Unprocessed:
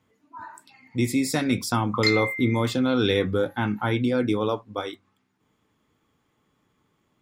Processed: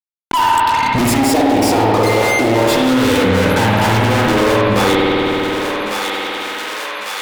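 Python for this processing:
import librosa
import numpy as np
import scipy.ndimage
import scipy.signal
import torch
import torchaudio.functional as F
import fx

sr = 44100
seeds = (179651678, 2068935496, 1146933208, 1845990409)

p1 = fx.dynamic_eq(x, sr, hz=890.0, q=7.0, threshold_db=-47.0, ratio=4.0, max_db=6)
p2 = fx.fuzz(p1, sr, gain_db=47.0, gate_db=-52.0)
p3 = fx.band_shelf(p2, sr, hz=500.0, db=11.0, octaves=1.7, at=(1.18, 2.62))
p4 = fx.rider(p3, sr, range_db=4, speed_s=0.5)
p5 = p4 + fx.echo_thinned(p4, sr, ms=1150, feedback_pct=30, hz=1100.0, wet_db=-19.0, dry=0)
p6 = fx.rev_spring(p5, sr, rt60_s=1.8, pass_ms=(54,), chirp_ms=45, drr_db=-3.0)
p7 = fx.env_flatten(p6, sr, amount_pct=70)
y = F.gain(torch.from_numpy(p7), -8.0).numpy()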